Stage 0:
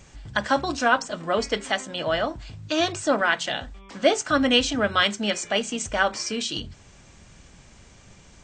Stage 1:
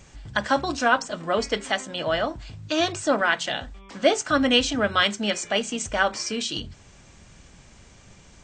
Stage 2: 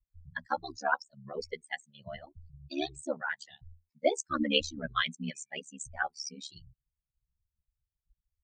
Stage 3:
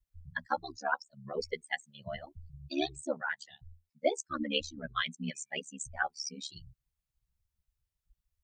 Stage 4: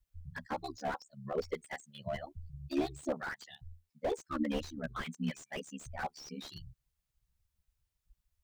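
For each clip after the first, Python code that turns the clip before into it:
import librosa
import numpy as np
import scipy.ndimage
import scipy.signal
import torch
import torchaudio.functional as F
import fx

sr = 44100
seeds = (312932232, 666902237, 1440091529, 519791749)

y1 = x
y2 = fx.bin_expand(y1, sr, power=3.0)
y2 = y2 * np.sin(2.0 * np.pi * 36.0 * np.arange(len(y2)) / sr)
y2 = y2 * 10.0 ** (-2.0 / 20.0)
y3 = fx.rider(y2, sr, range_db=4, speed_s=0.5)
y3 = y3 * 10.0 ** (-1.5 / 20.0)
y4 = fx.slew_limit(y3, sr, full_power_hz=15.0)
y4 = y4 * 10.0 ** (2.5 / 20.0)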